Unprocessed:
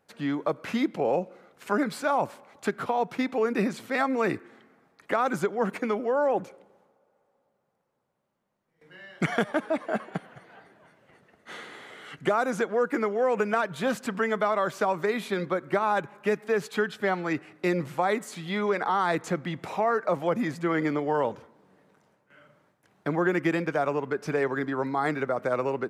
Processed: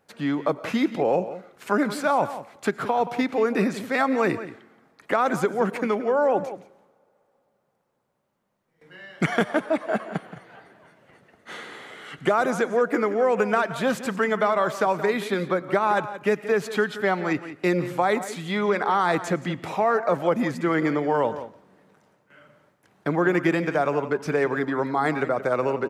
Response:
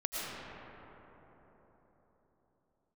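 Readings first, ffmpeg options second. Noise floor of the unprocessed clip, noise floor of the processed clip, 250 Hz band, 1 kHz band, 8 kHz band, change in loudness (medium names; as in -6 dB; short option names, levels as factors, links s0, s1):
-74 dBFS, -70 dBFS, +3.5 dB, +3.5 dB, +3.5 dB, +3.5 dB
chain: -filter_complex "[0:a]asplit=2[s0][s1];[s1]adelay=174.9,volume=0.224,highshelf=f=4000:g=-3.94[s2];[s0][s2]amix=inputs=2:normalize=0,asplit=2[s3][s4];[1:a]atrim=start_sample=2205,atrim=end_sample=6615[s5];[s4][s5]afir=irnorm=-1:irlink=0,volume=0.141[s6];[s3][s6]amix=inputs=2:normalize=0,volume=1.33"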